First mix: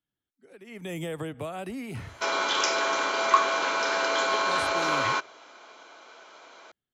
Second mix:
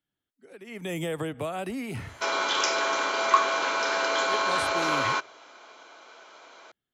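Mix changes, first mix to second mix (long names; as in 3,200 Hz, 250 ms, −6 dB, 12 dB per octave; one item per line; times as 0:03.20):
speech +3.5 dB
master: add low-shelf EQ 150 Hz −4 dB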